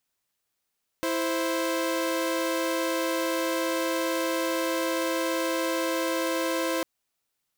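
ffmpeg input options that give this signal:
-f lavfi -i "aevalsrc='0.0531*((2*mod(329.63*t,1)-1)+(2*mod(523.25*t,1)-1))':d=5.8:s=44100"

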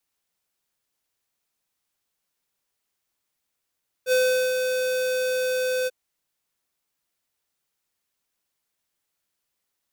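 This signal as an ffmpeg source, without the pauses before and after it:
-f lavfi -i "aevalsrc='0.112*(2*lt(mod(509*t,1),0.5)-1)':d=1.841:s=44100,afade=t=in:d=0.061,afade=t=out:st=0.061:d=0.401:silence=0.531,afade=t=out:st=1.81:d=0.031"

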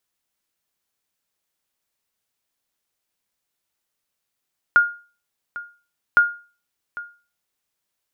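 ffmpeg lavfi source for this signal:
-f lavfi -i "aevalsrc='0.473*(sin(2*PI*1420*mod(t,1.41))*exp(-6.91*mod(t,1.41)/0.36)+0.126*sin(2*PI*1420*max(mod(t,1.41)-0.8,0))*exp(-6.91*max(mod(t,1.41)-0.8,0)/0.36))':d=2.82:s=44100"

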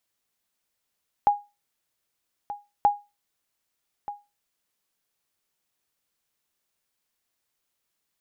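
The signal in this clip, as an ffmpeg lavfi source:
-f lavfi -i "aevalsrc='0.282*(sin(2*PI*821*mod(t,1.58))*exp(-6.91*mod(t,1.58)/0.25)+0.178*sin(2*PI*821*max(mod(t,1.58)-1.23,0))*exp(-6.91*max(mod(t,1.58)-1.23,0)/0.25))':d=3.16:s=44100"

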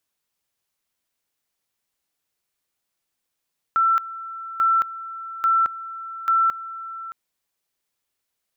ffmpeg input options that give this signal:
-f lavfi -i "aevalsrc='pow(10,(-15-16*gte(mod(t,0.84),0.22))/20)*sin(2*PI*1340*t)':d=3.36:s=44100"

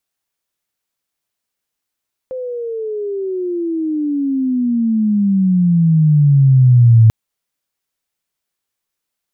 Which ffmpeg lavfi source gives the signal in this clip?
-f lavfi -i "aevalsrc='pow(10,(-21.5+17.5*t/4.79)/20)*sin(2*PI*520*4.79/log(110/520)*(exp(log(110/520)*t/4.79)-1))':d=4.79:s=44100"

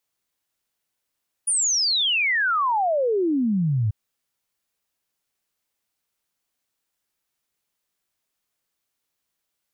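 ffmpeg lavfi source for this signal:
-f lavfi -i "aevalsrc='0.119*clip(min(t,2.44-t)/0.01,0,1)*sin(2*PI*9800*2.44/log(100/9800)*(exp(log(100/9800)*t/2.44)-1))':d=2.44:s=44100"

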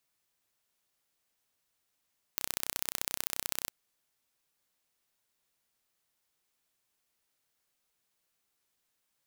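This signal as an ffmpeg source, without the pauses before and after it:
-f lavfi -i "aevalsrc='0.668*eq(mod(n,1400),0)*(0.5+0.5*eq(mod(n,2800),0))':d=1.31:s=44100"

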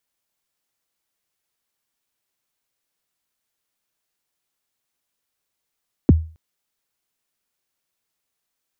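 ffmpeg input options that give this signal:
-f lavfi -i "aevalsrc='0.596*pow(10,-3*t/0.36)*sin(2*PI*(380*0.024/log(80/380)*(exp(log(80/380)*min(t,0.024)/0.024)-1)+80*max(t-0.024,0)))':d=0.27:s=44100"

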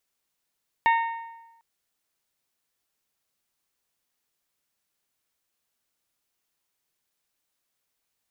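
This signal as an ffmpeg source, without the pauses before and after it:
-f lavfi -i "aevalsrc='0.158*pow(10,-3*t/1.07)*sin(2*PI*919*t)+0.0794*pow(10,-3*t/0.869)*sin(2*PI*1838*t)+0.0398*pow(10,-3*t/0.823)*sin(2*PI*2205.6*t)+0.02*pow(10,-3*t/0.77)*sin(2*PI*2757*t)+0.01*pow(10,-3*t/0.706)*sin(2*PI*3676*t)':d=0.75:s=44100"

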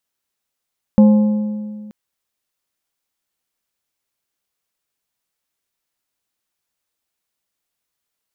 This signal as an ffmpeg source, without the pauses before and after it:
-f lavfi -i "aevalsrc='0.596*pow(10,-3*t/1.96)*sin(2*PI*211*t)+0.168*pow(10,-3*t/1.489)*sin(2*PI*527.5*t)+0.0473*pow(10,-3*t/1.293)*sin(2*PI*844*t)+0.0133*pow(10,-3*t/1.209)*sin(2*PI*1055*t)':d=0.93:s=44100"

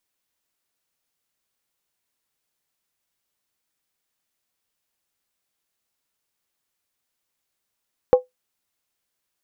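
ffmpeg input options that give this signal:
-f lavfi -i "aevalsrc='0.562*pow(10,-3*t/0.15)*sin(2*PI*504*t)+0.141*pow(10,-3*t/0.119)*sin(2*PI*803.4*t)+0.0355*pow(10,-3*t/0.103)*sin(2*PI*1076.5*t)+0.00891*pow(10,-3*t/0.099)*sin(2*PI*1157.2*t)+0.00224*pow(10,-3*t/0.092)*sin(2*PI*1337.1*t)':d=0.63:s=44100"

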